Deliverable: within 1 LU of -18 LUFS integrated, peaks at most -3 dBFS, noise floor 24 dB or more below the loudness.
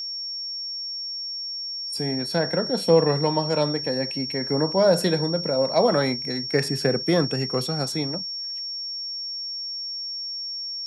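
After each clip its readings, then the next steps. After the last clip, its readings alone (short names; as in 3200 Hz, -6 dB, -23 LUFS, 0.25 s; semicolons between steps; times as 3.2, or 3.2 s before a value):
steady tone 5500 Hz; tone level -29 dBFS; loudness -24.0 LUFS; peak -6.0 dBFS; loudness target -18.0 LUFS
-> notch 5500 Hz, Q 30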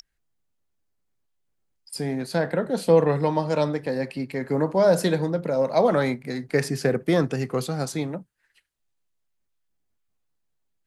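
steady tone none; loudness -24.0 LUFS; peak -6.5 dBFS; loudness target -18.0 LUFS
-> gain +6 dB; limiter -3 dBFS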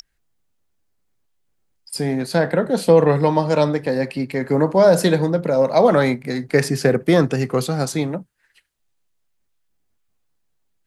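loudness -18.0 LUFS; peak -3.0 dBFS; noise floor -68 dBFS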